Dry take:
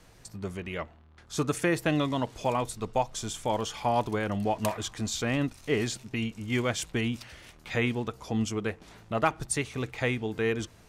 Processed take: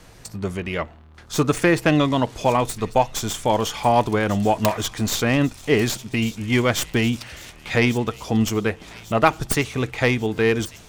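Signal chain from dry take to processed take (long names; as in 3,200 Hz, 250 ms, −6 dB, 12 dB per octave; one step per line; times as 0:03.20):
stylus tracing distortion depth 0.092 ms
0:01.40–0:02.12: high-shelf EQ 9,100 Hz −5.5 dB
delay with a high-pass on its return 1,144 ms, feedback 56%, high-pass 3,400 Hz, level −14 dB
level +9 dB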